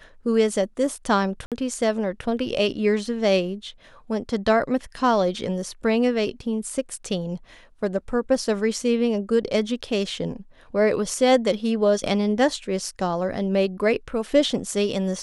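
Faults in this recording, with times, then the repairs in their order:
0:01.46–0:01.52: drop-out 57 ms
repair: repair the gap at 0:01.46, 57 ms

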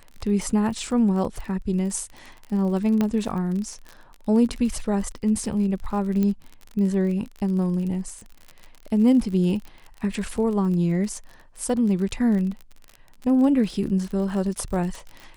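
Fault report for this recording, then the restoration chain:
surface crackle 41 per second −31 dBFS
0:03.01: click −11 dBFS
0:06.23: click −14 dBFS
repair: click removal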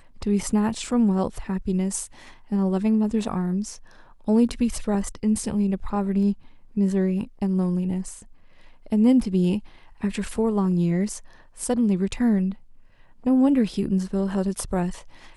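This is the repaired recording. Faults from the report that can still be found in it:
0:06.23: click

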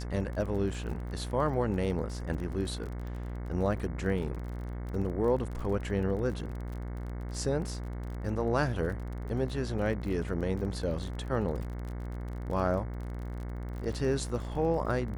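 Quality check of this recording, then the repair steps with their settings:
mains buzz 60 Hz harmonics 37 −37 dBFS
surface crackle 32 per second −38 dBFS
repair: click removal
hum removal 60 Hz, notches 37

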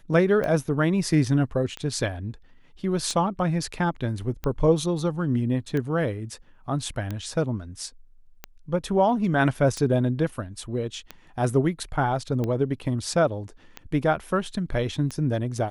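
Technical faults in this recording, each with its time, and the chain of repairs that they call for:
scratch tick 45 rpm −17 dBFS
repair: click removal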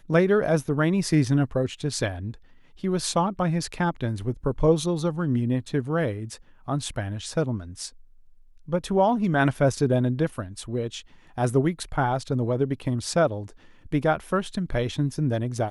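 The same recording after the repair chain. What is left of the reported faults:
none of them is left

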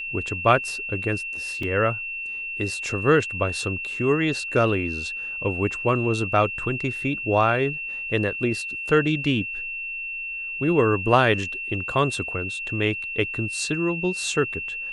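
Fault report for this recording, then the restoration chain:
whistle 2,700 Hz −29 dBFS
0:01.63: drop-out 3.4 ms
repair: notch filter 2,700 Hz, Q 30
repair the gap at 0:01.63, 3.4 ms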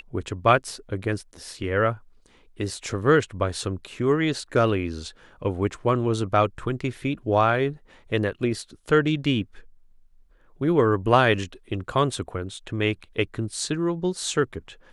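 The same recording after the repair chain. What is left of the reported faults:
none of them is left

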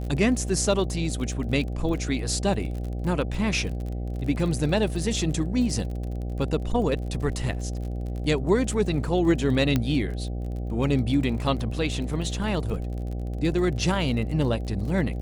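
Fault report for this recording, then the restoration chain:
mains buzz 60 Hz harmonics 13 −30 dBFS
surface crackle 38 per second −33 dBFS
0:09.76: click −10 dBFS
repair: click removal
hum removal 60 Hz, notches 13

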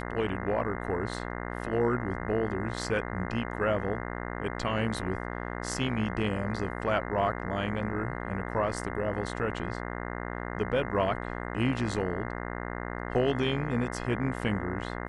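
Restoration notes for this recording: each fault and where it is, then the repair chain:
mains buzz 60 Hz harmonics 35 −36 dBFS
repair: hum removal 60 Hz, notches 35

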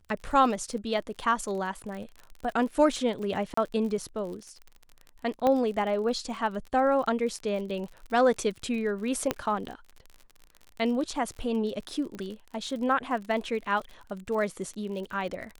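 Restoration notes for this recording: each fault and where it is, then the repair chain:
surface crackle 46 per second −36 dBFS
0:03.54–0:03.57: drop-out 34 ms
0:05.47: click −14 dBFS
0:09.31: click −11 dBFS
0:12.15: click −27 dBFS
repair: click removal
repair the gap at 0:03.54, 34 ms

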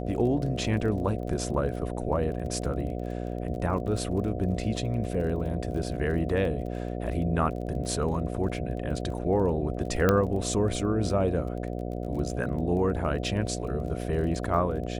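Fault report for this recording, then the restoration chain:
mains buzz 60 Hz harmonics 12 −33 dBFS
surface crackle 26 per second −37 dBFS
0:10.09: click −9 dBFS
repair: click removal
hum removal 60 Hz, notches 12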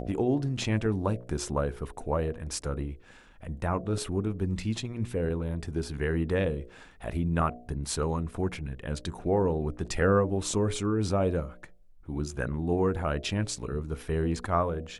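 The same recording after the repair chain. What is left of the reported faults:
none of them is left

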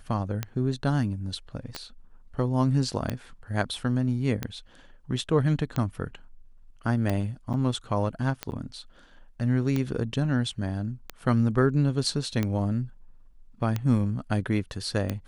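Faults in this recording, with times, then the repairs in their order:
scratch tick 45 rpm −14 dBFS
0:01.75: click −21 dBFS
0:07.53–0:07.54: drop-out 8.3 ms
0:08.51–0:08.52: drop-out 9.8 ms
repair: click removal
repair the gap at 0:07.53, 8.3 ms
repair the gap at 0:08.51, 9.8 ms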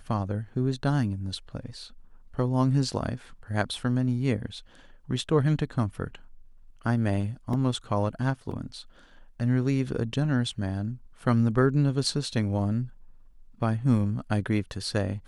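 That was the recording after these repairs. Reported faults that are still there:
0:01.75: click

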